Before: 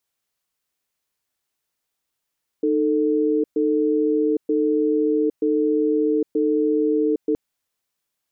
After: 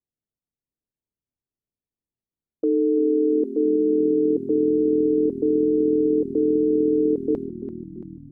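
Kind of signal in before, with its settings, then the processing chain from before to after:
cadence 307 Hz, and 443 Hz, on 0.81 s, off 0.12 s, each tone -19.5 dBFS 4.72 s
low-pass opened by the level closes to 300 Hz, open at -21 dBFS; on a send: frequency-shifting echo 0.338 s, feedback 64%, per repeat -40 Hz, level -13 dB; on the sum: AAC 128 kbps 44100 Hz

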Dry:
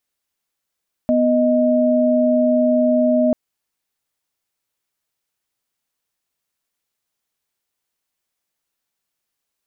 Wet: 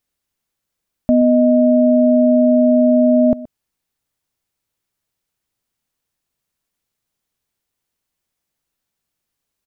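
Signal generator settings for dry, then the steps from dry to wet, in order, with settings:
chord B3/D#5 sine, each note -15.5 dBFS 2.24 s
low shelf 270 Hz +10 dB; echo 0.124 s -18.5 dB

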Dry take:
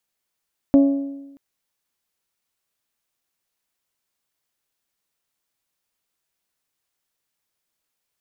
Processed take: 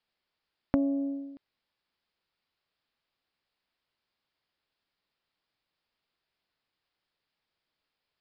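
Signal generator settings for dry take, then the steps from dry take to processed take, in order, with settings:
metal hit bell, length 0.63 s, lowest mode 278 Hz, decay 1.03 s, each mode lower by 10 dB, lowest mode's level -8 dB
compressor 5:1, threshold -25 dBFS; downsampling 11025 Hz

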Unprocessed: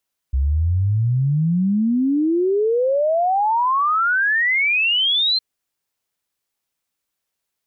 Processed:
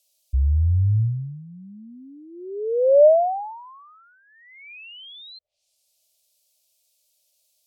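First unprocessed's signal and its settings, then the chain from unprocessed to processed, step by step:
log sweep 64 Hz -> 4200 Hz 5.06 s -15 dBFS
treble ducked by the level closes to 500 Hz, closed at -18.5 dBFS; EQ curve 110 Hz 0 dB, 160 Hz -22 dB, 320 Hz -25 dB, 600 Hz +13 dB, 960 Hz -11 dB, 1600 Hz -21 dB, 2400 Hz +4 dB, 4400 Hz +14 dB

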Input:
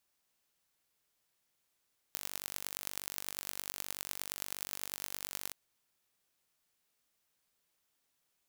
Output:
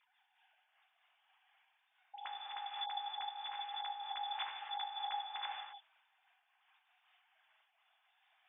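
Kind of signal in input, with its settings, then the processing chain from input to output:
pulse train 48.4/s, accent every 5, -9 dBFS 3.38 s
sine-wave speech; non-linear reverb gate 0.29 s flat, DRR -1.5 dB; noise-modulated level, depth 65%

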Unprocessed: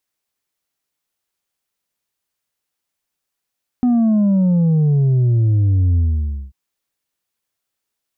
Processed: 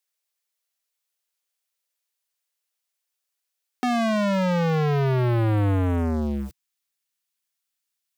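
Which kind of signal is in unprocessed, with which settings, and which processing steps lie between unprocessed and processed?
sub drop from 250 Hz, over 2.69 s, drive 3.5 dB, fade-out 0.55 s, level -12 dB
tilt shelf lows -8.5 dB; sample leveller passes 5; high-pass sweep 490 Hz -> 140 Hz, 3.53–5.69

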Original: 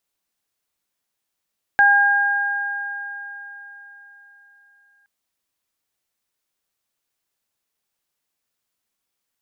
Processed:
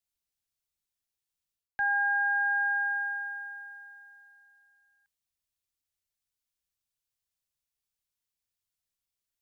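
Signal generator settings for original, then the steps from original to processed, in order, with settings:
additive tone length 3.27 s, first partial 809 Hz, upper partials 5 dB, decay 3.31 s, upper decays 4.16 s, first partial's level -15.5 dB
reverse; compressor 16:1, threshold -25 dBFS; reverse; three-band expander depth 40%

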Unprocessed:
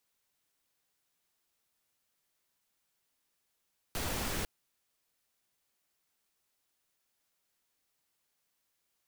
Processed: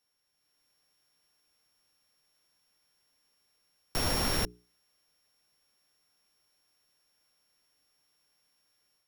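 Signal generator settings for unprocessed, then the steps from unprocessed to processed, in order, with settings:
noise pink, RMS -35 dBFS 0.50 s
sample sorter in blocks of 8 samples; notches 60/120/180/240/300/360/420 Hz; AGC gain up to 6.5 dB

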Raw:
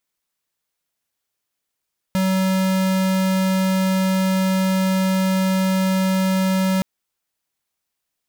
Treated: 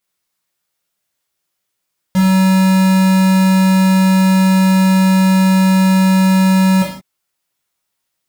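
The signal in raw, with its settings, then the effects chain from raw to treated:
tone square 189 Hz -18.5 dBFS 4.67 s
non-linear reverb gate 0.2 s falling, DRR -4.5 dB

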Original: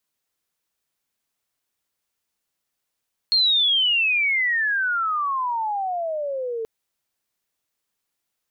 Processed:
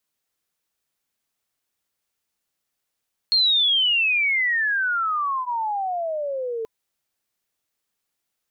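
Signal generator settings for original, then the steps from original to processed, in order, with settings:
chirp logarithmic 4300 Hz -> 440 Hz -15 dBFS -> -25 dBFS 3.33 s
notch 1000 Hz, Q 29

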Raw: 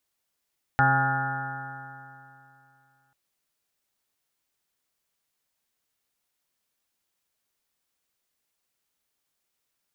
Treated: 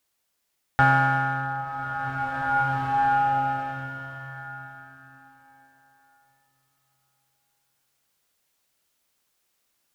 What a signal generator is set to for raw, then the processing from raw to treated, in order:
stretched partials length 2.34 s, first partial 133 Hz, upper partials -8.5/-19/-16/-14.5/3/-17/-14.5/-7/2/-7.5/-7 dB, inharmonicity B 0.0015, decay 2.76 s, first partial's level -23 dB
notches 50/100/150/200/250/300/350/400 Hz; in parallel at -4 dB: one-sided clip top -30.5 dBFS; on the sum: bloom reverb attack 2.19 s, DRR 0.5 dB

